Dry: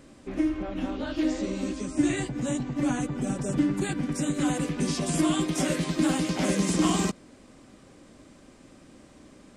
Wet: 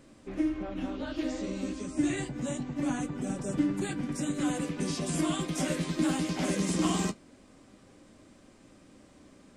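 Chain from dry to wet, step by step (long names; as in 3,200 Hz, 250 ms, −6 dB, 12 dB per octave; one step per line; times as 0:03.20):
flanger 0.24 Hz, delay 9.2 ms, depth 3.5 ms, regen −57%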